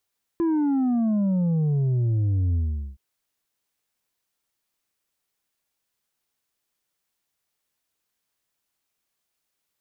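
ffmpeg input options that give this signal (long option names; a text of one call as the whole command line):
ffmpeg -f lavfi -i "aevalsrc='0.1*clip((2.57-t)/0.42,0,1)*tanh(1.68*sin(2*PI*340*2.57/log(65/340)*(exp(log(65/340)*t/2.57)-1)))/tanh(1.68)':duration=2.57:sample_rate=44100" out.wav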